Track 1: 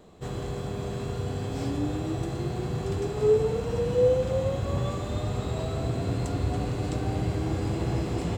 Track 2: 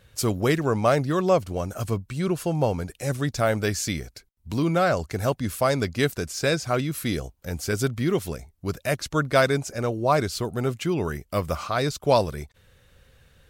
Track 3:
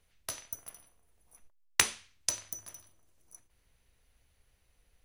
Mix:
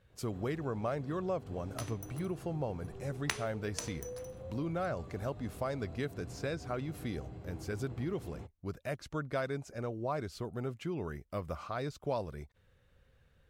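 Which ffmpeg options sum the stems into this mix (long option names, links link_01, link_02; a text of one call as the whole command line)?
ffmpeg -i stem1.wav -i stem2.wav -i stem3.wav -filter_complex "[0:a]alimiter=limit=-21.5dB:level=0:latency=1:release=245,adelay=100,volume=-15.5dB[link_01];[1:a]volume=-10dB[link_02];[2:a]adelay=1500,volume=1.5dB[link_03];[link_01][link_02][link_03]amix=inputs=3:normalize=0,highshelf=frequency=3300:gain=-11,acompressor=threshold=-34dB:ratio=2" out.wav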